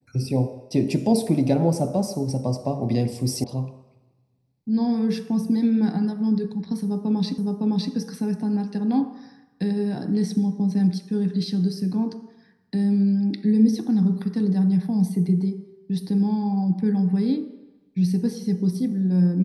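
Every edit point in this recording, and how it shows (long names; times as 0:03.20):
0:03.44: cut off before it has died away
0:07.38: the same again, the last 0.56 s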